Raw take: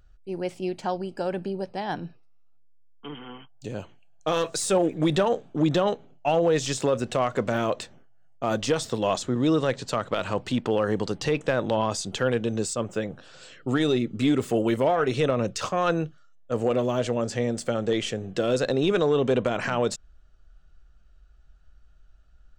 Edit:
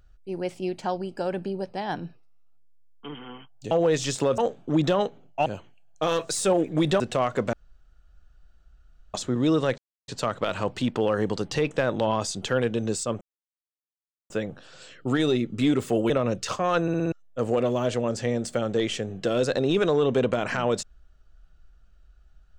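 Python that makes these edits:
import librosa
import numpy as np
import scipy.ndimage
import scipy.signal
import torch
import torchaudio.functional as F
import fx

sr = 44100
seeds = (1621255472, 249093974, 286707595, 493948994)

y = fx.edit(x, sr, fx.swap(start_s=3.71, length_s=1.54, other_s=6.33, other_length_s=0.67),
    fx.room_tone_fill(start_s=7.53, length_s=1.61),
    fx.insert_silence(at_s=9.78, length_s=0.3),
    fx.insert_silence(at_s=12.91, length_s=1.09),
    fx.cut(start_s=14.71, length_s=0.52),
    fx.stutter_over(start_s=15.95, slice_s=0.06, count=5), tone=tone)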